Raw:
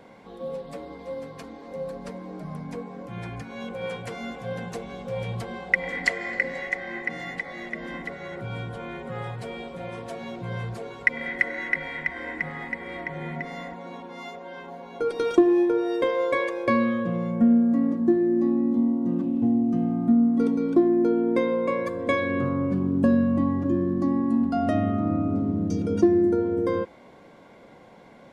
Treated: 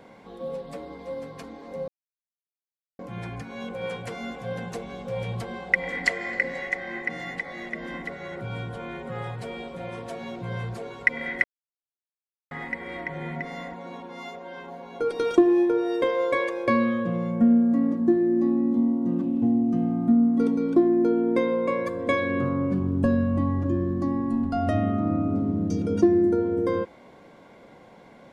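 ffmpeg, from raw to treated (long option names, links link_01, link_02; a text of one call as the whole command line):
ffmpeg -i in.wav -filter_complex "[0:a]asplit=3[link_01][link_02][link_03];[link_01]afade=type=out:start_time=22.79:duration=0.02[link_04];[link_02]asubboost=boost=5:cutoff=80,afade=type=in:start_time=22.79:duration=0.02,afade=type=out:start_time=24.78:duration=0.02[link_05];[link_03]afade=type=in:start_time=24.78:duration=0.02[link_06];[link_04][link_05][link_06]amix=inputs=3:normalize=0,asplit=5[link_07][link_08][link_09][link_10][link_11];[link_07]atrim=end=1.88,asetpts=PTS-STARTPTS,afade=type=out:start_time=1.876:duration=0.004:curve=hsin[link_12];[link_08]atrim=start=1.88:end=2.99,asetpts=PTS-STARTPTS,volume=0[link_13];[link_09]atrim=start=2.99:end=11.44,asetpts=PTS-STARTPTS,afade=type=in:duration=0.004:curve=hsin,afade=type=out:start_time=8.446:duration=0.004:curve=hsin[link_14];[link_10]atrim=start=11.44:end=12.51,asetpts=PTS-STARTPTS,volume=0[link_15];[link_11]atrim=start=12.51,asetpts=PTS-STARTPTS,afade=type=in:duration=0.004:curve=hsin[link_16];[link_12][link_13][link_14][link_15][link_16]concat=n=5:v=0:a=1" out.wav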